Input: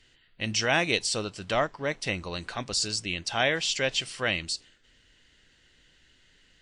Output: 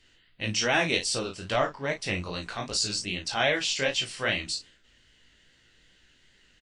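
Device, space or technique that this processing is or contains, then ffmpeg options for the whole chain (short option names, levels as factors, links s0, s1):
double-tracked vocal: -filter_complex "[0:a]asplit=2[s0][s1];[s1]adelay=34,volume=0.398[s2];[s0][s2]amix=inputs=2:normalize=0,flanger=delay=15:depth=7.6:speed=2.5,volume=1.33"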